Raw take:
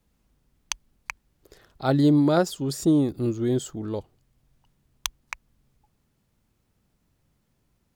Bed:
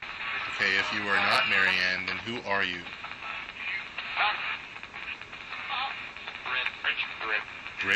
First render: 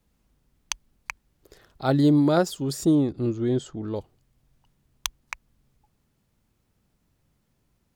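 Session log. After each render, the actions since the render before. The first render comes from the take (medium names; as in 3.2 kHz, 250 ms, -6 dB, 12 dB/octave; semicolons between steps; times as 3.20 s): 2.95–3.96 s: distance through air 84 m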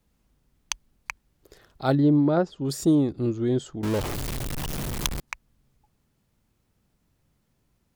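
1.95–2.65 s: tape spacing loss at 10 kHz 31 dB; 3.83–5.20 s: jump at every zero crossing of -24 dBFS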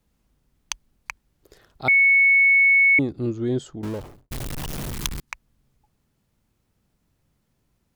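1.88–2.99 s: bleep 2.21 kHz -12.5 dBFS; 3.64–4.31 s: studio fade out; 4.92–5.32 s: peaking EQ 620 Hz -10 dB 0.87 oct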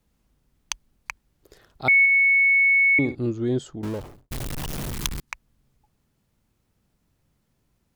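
1.99–3.15 s: flutter echo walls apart 10.9 m, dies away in 0.34 s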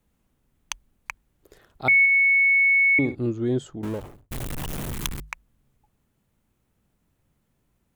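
peaking EQ 4.9 kHz -6 dB 0.73 oct; hum notches 50/100/150 Hz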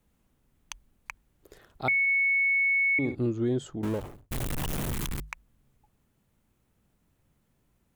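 peak limiter -17 dBFS, peak gain reduction 9 dB; compression, threshold -23 dBFS, peak gain reduction 4.5 dB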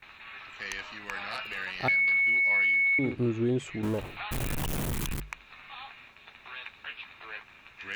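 add bed -12.5 dB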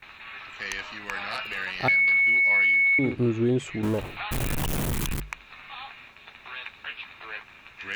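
trim +4 dB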